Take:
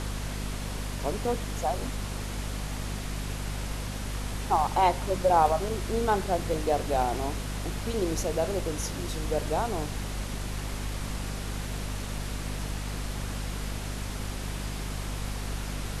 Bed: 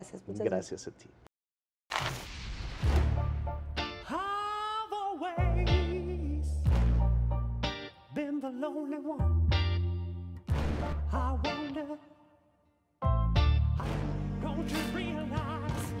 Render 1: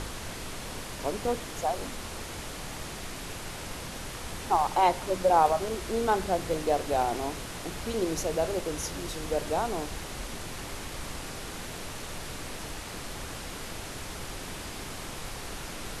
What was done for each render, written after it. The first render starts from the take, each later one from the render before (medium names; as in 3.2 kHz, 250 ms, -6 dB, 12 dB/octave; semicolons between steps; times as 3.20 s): hum notches 50/100/150/200/250 Hz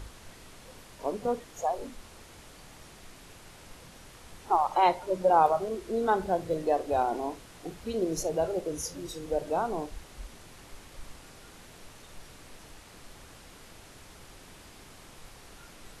noise print and reduce 12 dB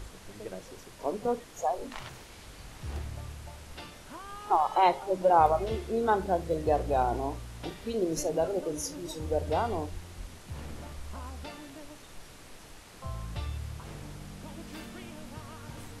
add bed -10.5 dB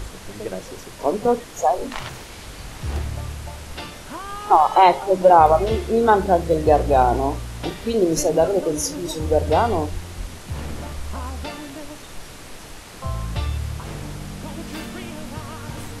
trim +11 dB; peak limiter -2 dBFS, peak gain reduction 2.5 dB